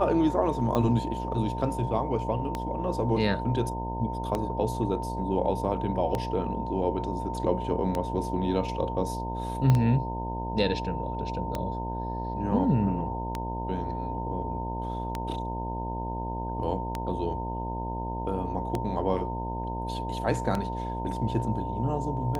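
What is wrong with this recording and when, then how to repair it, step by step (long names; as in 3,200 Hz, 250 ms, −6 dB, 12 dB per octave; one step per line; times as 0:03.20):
mains buzz 60 Hz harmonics 17 −34 dBFS
scratch tick 33 1/3 rpm −15 dBFS
whistle 910 Hz −34 dBFS
0:09.70: click −12 dBFS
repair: click removal
notch filter 910 Hz, Q 30
hum removal 60 Hz, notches 17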